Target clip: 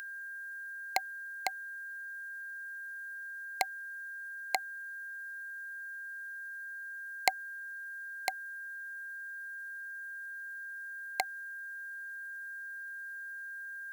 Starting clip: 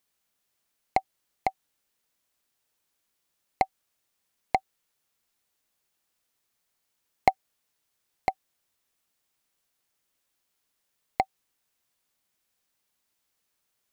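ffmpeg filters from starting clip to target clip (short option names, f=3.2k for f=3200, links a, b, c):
-af "aeval=exprs='val(0)+0.0126*sin(2*PI*1600*n/s)':c=same,aderivative,acompressor=mode=upward:threshold=-58dB:ratio=2.5,volume=10.5dB"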